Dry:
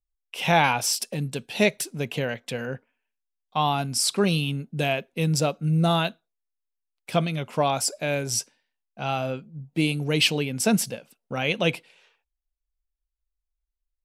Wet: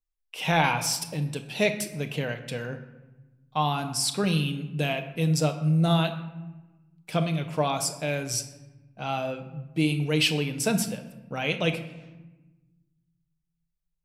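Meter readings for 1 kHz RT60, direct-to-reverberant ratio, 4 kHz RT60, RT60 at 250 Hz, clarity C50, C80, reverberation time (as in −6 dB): 1.1 s, 6.0 dB, 0.65 s, 1.8 s, 10.5 dB, 13.0 dB, 1.2 s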